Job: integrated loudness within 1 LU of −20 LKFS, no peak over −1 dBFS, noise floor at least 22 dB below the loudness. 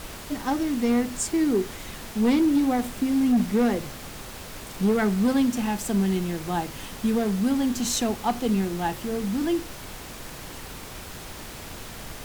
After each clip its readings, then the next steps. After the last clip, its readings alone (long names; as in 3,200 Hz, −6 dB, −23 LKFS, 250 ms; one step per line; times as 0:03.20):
share of clipped samples 0.8%; peaks flattened at −16.0 dBFS; background noise floor −40 dBFS; target noise floor −47 dBFS; integrated loudness −25.0 LKFS; sample peak −16.0 dBFS; target loudness −20.0 LKFS
→ clipped peaks rebuilt −16 dBFS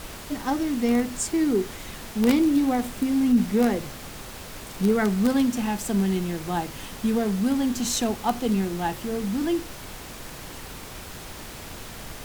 share of clipped samples 0.0%; background noise floor −40 dBFS; target noise floor −47 dBFS
→ noise reduction from a noise print 7 dB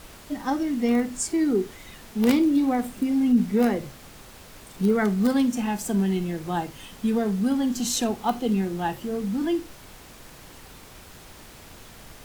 background noise floor −47 dBFS; integrated loudness −24.5 LKFS; sample peak −7.0 dBFS; target loudness −20.0 LKFS
→ level +4.5 dB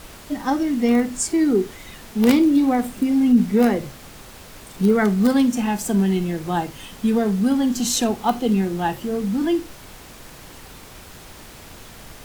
integrated loudness −20.0 LKFS; sample peak −2.5 dBFS; background noise floor −42 dBFS